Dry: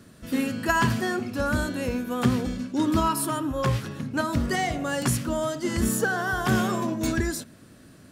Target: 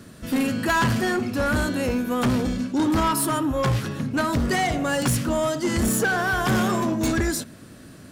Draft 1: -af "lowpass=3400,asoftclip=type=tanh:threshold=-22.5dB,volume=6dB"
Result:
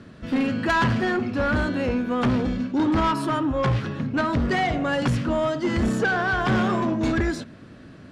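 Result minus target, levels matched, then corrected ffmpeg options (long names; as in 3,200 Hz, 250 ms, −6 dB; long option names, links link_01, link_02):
4,000 Hz band −2.5 dB
-af "asoftclip=type=tanh:threshold=-22.5dB,volume=6dB"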